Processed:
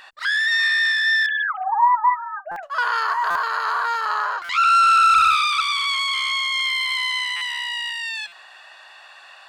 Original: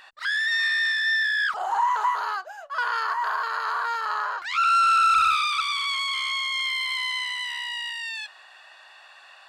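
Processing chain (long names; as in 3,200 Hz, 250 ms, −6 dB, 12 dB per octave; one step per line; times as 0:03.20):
0:01.26–0:02.63: three sine waves on the formant tracks
0:07.08–0:07.91: high-pass filter 400 Hz → 190 Hz 24 dB per octave
buffer that repeats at 0:02.51/0:03.30/0:04.44/0:07.36/0:08.27, samples 256, times 8
level +4.5 dB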